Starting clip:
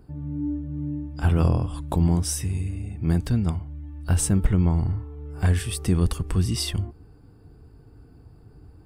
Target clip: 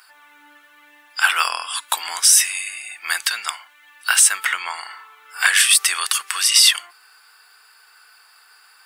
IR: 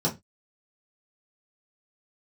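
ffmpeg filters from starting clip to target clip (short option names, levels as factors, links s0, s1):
-af "highpass=f=1400:w=0.5412,highpass=f=1400:w=1.3066,alimiter=level_in=15.8:limit=0.891:release=50:level=0:latency=1,volume=0.891"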